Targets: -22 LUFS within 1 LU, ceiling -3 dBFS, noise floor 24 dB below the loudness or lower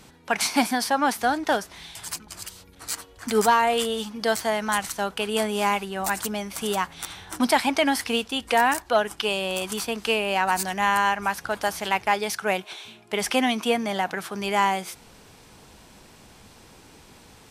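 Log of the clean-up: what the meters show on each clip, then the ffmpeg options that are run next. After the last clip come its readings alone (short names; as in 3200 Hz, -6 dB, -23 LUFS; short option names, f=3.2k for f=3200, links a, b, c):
loudness -24.5 LUFS; peak -8.5 dBFS; loudness target -22.0 LUFS
-> -af "volume=2.5dB"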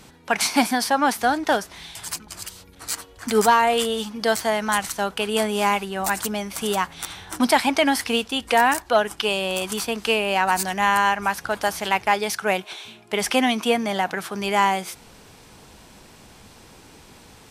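loudness -22.0 LUFS; peak -6.0 dBFS; noise floor -49 dBFS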